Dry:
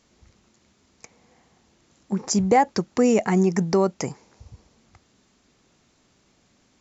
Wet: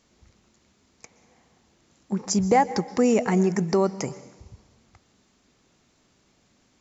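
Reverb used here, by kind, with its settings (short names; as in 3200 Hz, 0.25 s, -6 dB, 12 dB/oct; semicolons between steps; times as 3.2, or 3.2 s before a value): plate-style reverb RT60 1 s, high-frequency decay 0.95×, pre-delay 0.11 s, DRR 16 dB; gain -1.5 dB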